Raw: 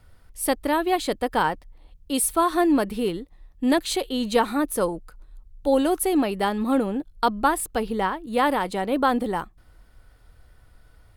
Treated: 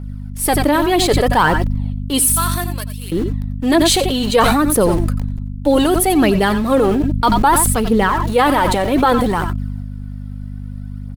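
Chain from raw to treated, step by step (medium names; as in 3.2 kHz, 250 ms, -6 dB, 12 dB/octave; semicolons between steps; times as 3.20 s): 2.24–3.12 s: differentiator; phaser 0.63 Hz, delay 3.9 ms, feedback 52%; in parallel at -4.5 dB: small samples zeroed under -33 dBFS; on the sum: hum 50 Hz, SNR 11 dB; on a send: multi-tap echo 88/91 ms -16/-16 dB; on the sum: loudness maximiser +6 dB; decay stretcher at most 21 dB/s; trim -3 dB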